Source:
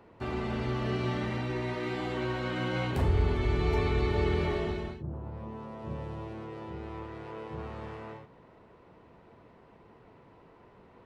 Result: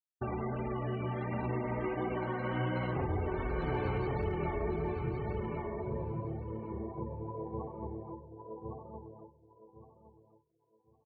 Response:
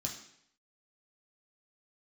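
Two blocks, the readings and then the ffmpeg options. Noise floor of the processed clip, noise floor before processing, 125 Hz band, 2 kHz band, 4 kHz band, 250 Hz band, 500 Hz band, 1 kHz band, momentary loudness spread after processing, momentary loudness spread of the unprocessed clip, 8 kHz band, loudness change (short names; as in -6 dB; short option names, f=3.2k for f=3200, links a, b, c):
-73 dBFS, -57 dBFS, -4.0 dB, -5.0 dB, -12.5 dB, -2.5 dB, -2.5 dB, -1.0 dB, 11 LU, 14 LU, n/a, -4.0 dB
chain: -filter_complex "[0:a]afftfilt=real='re*gte(hypot(re,im),0.0224)':imag='im*gte(hypot(re,im),0.0224)':win_size=1024:overlap=0.75,flanger=delay=4.3:depth=6:regen=-14:speed=1.4:shape=triangular,agate=range=-33dB:threshold=-40dB:ratio=3:detection=peak,equalizer=f=860:w=1.9:g=4,bandreject=f=50:t=h:w=6,bandreject=f=100:t=h:w=6,bandreject=f=150:t=h:w=6,bandreject=f=200:t=h:w=6,bandreject=f=250:t=h:w=6,bandreject=f=300:t=h:w=6,bandreject=f=350:t=h:w=6,volume=23dB,asoftclip=hard,volume=-23dB,highshelf=f=4.3k:g=-7,acompressor=threshold=-40dB:ratio=4,asplit=2[a][b];[b]adelay=1112,lowpass=f=3.2k:p=1,volume=-3dB,asplit=2[c][d];[d]adelay=1112,lowpass=f=3.2k:p=1,volume=0.23,asplit=2[e][f];[f]adelay=1112,lowpass=f=3.2k:p=1,volume=0.23[g];[a][c][e][g]amix=inputs=4:normalize=0,volume=6.5dB"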